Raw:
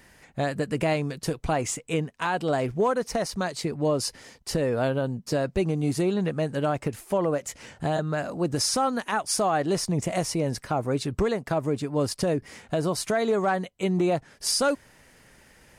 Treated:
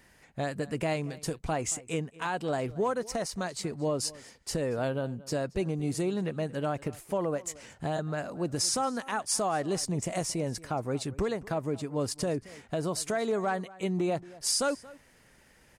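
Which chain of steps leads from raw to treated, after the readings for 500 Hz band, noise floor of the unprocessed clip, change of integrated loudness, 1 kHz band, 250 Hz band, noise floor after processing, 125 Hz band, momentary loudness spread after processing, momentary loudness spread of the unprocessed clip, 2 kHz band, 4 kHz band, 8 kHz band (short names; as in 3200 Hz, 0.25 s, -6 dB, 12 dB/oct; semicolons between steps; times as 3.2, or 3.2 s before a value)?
-5.5 dB, -56 dBFS, -5.0 dB, -5.5 dB, -5.5 dB, -61 dBFS, -5.5 dB, 7 LU, 6 LU, -5.5 dB, -4.0 dB, -1.5 dB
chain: dynamic EQ 7700 Hz, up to +6 dB, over -48 dBFS, Q 1.7; outdoor echo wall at 39 m, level -20 dB; gain -5.5 dB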